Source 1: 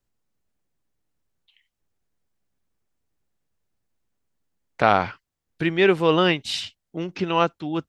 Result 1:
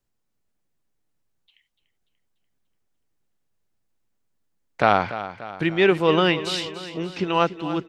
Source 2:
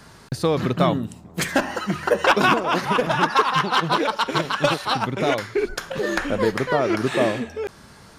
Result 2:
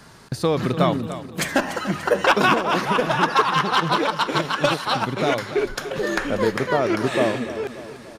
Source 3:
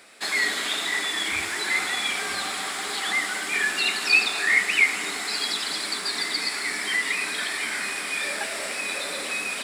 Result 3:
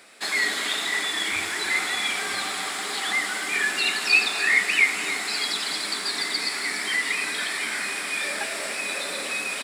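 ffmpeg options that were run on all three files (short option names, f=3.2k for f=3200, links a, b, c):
-filter_complex "[0:a]equalizer=f=65:w=4.4:g=-11.5,asplit=2[a][b];[b]aecho=0:1:292|584|876|1168|1460|1752:0.224|0.121|0.0653|0.0353|0.019|0.0103[c];[a][c]amix=inputs=2:normalize=0"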